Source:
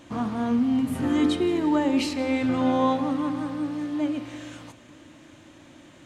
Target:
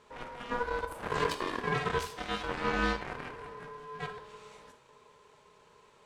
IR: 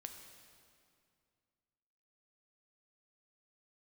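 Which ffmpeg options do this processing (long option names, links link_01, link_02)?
-filter_complex "[0:a]aeval=exprs='0.299*(cos(1*acos(clip(val(0)/0.299,-1,1)))-cos(1*PI/2))+0.075*(cos(7*acos(clip(val(0)/0.299,-1,1)))-cos(7*PI/2))':channel_layout=same,aeval=exprs='val(0)*sin(2*PI*730*n/s)':channel_layout=same[link_01];[1:a]atrim=start_sample=2205,atrim=end_sample=3969[link_02];[link_01][link_02]afir=irnorm=-1:irlink=0"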